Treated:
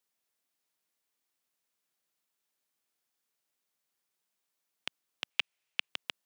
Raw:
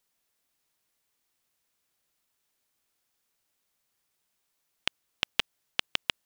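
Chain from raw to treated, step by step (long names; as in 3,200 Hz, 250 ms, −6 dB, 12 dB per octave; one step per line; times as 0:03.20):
high-pass filter 150 Hz 12 dB per octave
brickwall limiter −8 dBFS, peak gain reduction 3.5 dB
0:05.30–0:05.89: graphic EQ with 15 bands 250 Hz −9 dB, 2,500 Hz +10 dB, 16,000 Hz −7 dB
level −6 dB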